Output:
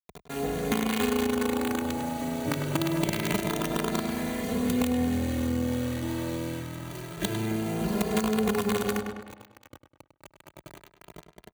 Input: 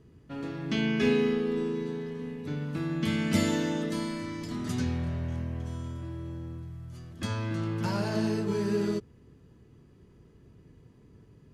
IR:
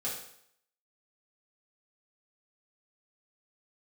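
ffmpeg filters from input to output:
-filter_complex "[0:a]asplit=2[a][b];[b]volume=28dB,asoftclip=hard,volume=-28dB,volume=-9dB[c];[a][c]amix=inputs=2:normalize=0,equalizer=f=250:t=o:w=1:g=4,equalizer=f=500:t=o:w=1:g=11,equalizer=f=1k:t=o:w=1:g=-7,equalizer=f=2k:t=o:w=1:g=10,equalizer=f=8k:t=o:w=1:g=-10,acrossover=split=500|2900[d][e][f];[d]acompressor=threshold=-21dB:ratio=4[g];[e]acompressor=threshold=-43dB:ratio=4[h];[f]acompressor=threshold=-43dB:ratio=4[i];[g][h][i]amix=inputs=3:normalize=0,acrusher=bits=4:dc=4:mix=0:aa=0.000001,highpass=47,highshelf=f=8.6k:g=3.5,bandreject=f=5.2k:w=5.7,asplit=2[j][k];[k]adelay=101,lowpass=f=4.7k:p=1,volume=-9dB,asplit=2[l][m];[m]adelay=101,lowpass=f=4.7k:p=1,volume=0.49,asplit=2[n][o];[o]adelay=101,lowpass=f=4.7k:p=1,volume=0.49,asplit=2[p][q];[q]adelay=101,lowpass=f=4.7k:p=1,volume=0.49,asplit=2[r][s];[s]adelay=101,lowpass=f=4.7k:p=1,volume=0.49,asplit=2[t][u];[u]adelay=101,lowpass=f=4.7k:p=1,volume=0.49[v];[j][l][n][p][r][t][v]amix=inputs=7:normalize=0,acompressor=threshold=-27dB:ratio=6,asplit=2[w][x];[x]adelay=2.5,afreqshift=0.26[y];[w][y]amix=inputs=2:normalize=1,volume=7.5dB"

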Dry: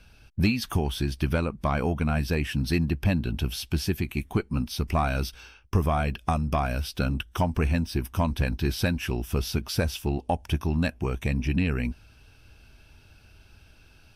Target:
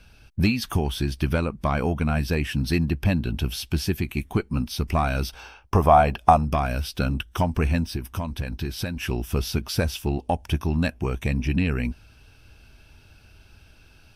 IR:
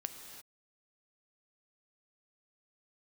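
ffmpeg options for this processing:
-filter_complex "[0:a]asettb=1/sr,asplit=3[a][b][c];[a]atrim=end=5.294[d];[b]atrim=start=5.29:end=6.45,asetpts=PTS-STARTPTS,afade=t=in:d=0.004:c=qsin,afade=t=out:st=1.156:d=0.004:c=qsin,equalizer=f=770:t=o:w=1.3:g=12.5[e];[c]atrim=start=6.446[f];[d][e]acrossfade=d=0.004:c1=hsin:c2=qsin[g];[g][f]acrossfade=d=0.004:c1=qsin:c2=hsin,asettb=1/sr,asplit=3[h][i][j];[h]atrim=end=7.934[k];[i]atrim=start=7.93:end=8.97,asetpts=PTS-STARTPTS,afade=t=in:d=0.004:c=qsin,afade=t=out:st=1.036:d=0.004:c=qsin,acompressor=threshold=-27dB:ratio=6[l];[j]atrim=start=8.966[m];[k][l]acrossfade=d=0.004:c1=hsin:c2=qsin[n];[n][m]acrossfade=d=0.004:c1=qsin:c2=hsin,volume=2dB"

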